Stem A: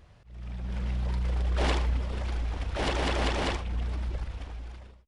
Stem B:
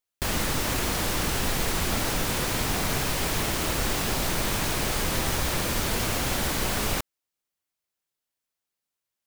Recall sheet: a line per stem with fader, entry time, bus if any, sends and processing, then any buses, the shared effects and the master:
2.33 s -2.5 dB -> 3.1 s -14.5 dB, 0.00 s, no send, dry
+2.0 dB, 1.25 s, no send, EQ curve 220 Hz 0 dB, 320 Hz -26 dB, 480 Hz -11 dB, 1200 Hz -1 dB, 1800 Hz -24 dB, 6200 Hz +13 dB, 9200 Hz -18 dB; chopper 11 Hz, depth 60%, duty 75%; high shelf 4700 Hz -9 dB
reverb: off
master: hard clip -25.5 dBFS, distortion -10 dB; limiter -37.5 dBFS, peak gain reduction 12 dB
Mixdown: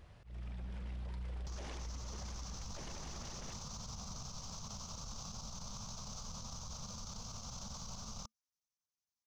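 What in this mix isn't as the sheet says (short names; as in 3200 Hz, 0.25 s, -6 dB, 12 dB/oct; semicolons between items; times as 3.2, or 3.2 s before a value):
stem B +2.0 dB -> -6.0 dB; master: missing hard clip -25.5 dBFS, distortion -10 dB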